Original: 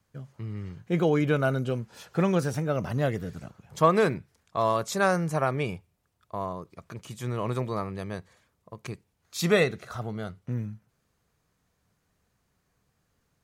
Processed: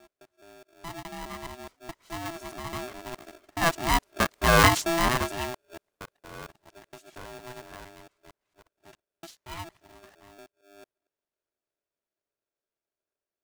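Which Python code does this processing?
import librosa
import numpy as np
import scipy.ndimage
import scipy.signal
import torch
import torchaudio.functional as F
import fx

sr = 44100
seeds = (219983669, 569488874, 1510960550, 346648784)

y = fx.local_reverse(x, sr, ms=220.0)
y = fx.doppler_pass(y, sr, speed_mps=16, closest_m=4.7, pass_at_s=4.52)
y = y * np.sign(np.sin(2.0 * np.pi * 500.0 * np.arange(len(y)) / sr))
y = y * 10.0 ** (6.5 / 20.0)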